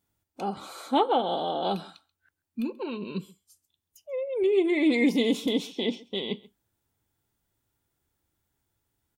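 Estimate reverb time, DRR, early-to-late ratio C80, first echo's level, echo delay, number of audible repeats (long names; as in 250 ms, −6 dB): no reverb audible, no reverb audible, no reverb audible, −22.5 dB, 134 ms, 1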